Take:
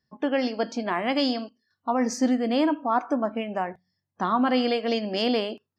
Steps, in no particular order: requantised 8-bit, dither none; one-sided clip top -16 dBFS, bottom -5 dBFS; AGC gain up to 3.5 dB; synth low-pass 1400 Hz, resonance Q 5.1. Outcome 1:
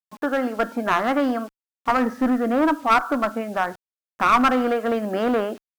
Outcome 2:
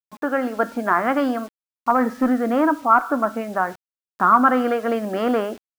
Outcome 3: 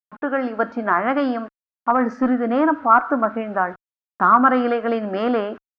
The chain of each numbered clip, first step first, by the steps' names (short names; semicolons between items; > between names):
synth low-pass > AGC > requantised > one-sided clip; one-sided clip > synth low-pass > requantised > AGC; requantised > one-sided clip > AGC > synth low-pass